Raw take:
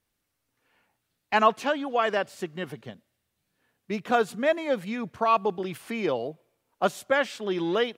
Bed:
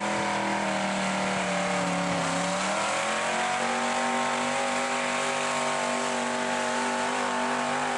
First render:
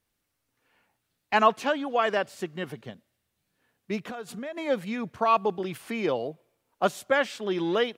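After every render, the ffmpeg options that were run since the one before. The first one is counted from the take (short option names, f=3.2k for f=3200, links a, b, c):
-filter_complex "[0:a]asplit=3[a][b][c];[a]afade=t=out:st=4.07:d=0.02[d];[b]acompressor=threshold=-33dB:ratio=10:attack=3.2:release=140:knee=1:detection=peak,afade=t=in:st=4.07:d=0.02,afade=t=out:st=4.56:d=0.02[e];[c]afade=t=in:st=4.56:d=0.02[f];[d][e][f]amix=inputs=3:normalize=0"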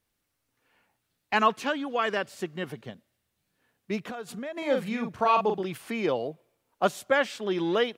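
-filter_complex "[0:a]asettb=1/sr,asplit=3[a][b][c];[a]atrim=end=1.344[d];[b]atrim=start=1.34:end=2.32,asetpts=PTS-STARTPTS,afade=t=in:d=0.004:c=qsin,afade=t=out:st=0.976:d=0.004:c=qsin,equalizer=f=690:t=o:w=0.77:g=-6[e];[c]atrim=start=2.316[f];[d][e]acrossfade=d=0.004:c1=hsin:c2=qsin[g];[g][f]acrossfade=d=0.004:c1=qsin:c2=hsin,asettb=1/sr,asplit=3[h][i][j];[h]atrim=end=4.584[k];[i]atrim=start=4.58:end=5.62,asetpts=PTS-STARTPTS,afade=t=in:d=0.004:c=qsin,afade=t=out:st=1.036:d=0.004:c=qsin,asplit=2[l][m];[m]adelay=42,volume=-5dB[n];[l][n]amix=inputs=2:normalize=0,atrim=end_sample=45864[o];[j]atrim=start=5.616[p];[k][o]acrossfade=d=0.004:c1=hsin:c2=qsin[q];[q][p]acrossfade=d=0.004:c1=qsin:c2=hsin"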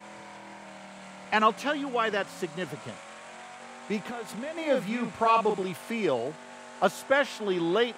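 -filter_complex "[1:a]volume=-18dB[a];[0:a][a]amix=inputs=2:normalize=0"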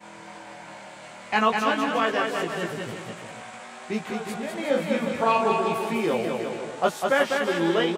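-filter_complex "[0:a]asplit=2[a][b];[b]adelay=18,volume=-3dB[c];[a][c]amix=inputs=2:normalize=0,asplit=2[d][e];[e]aecho=0:1:200|360|488|590.4|672.3:0.631|0.398|0.251|0.158|0.1[f];[d][f]amix=inputs=2:normalize=0"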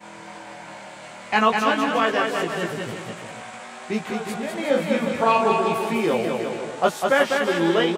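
-af "volume=3dB"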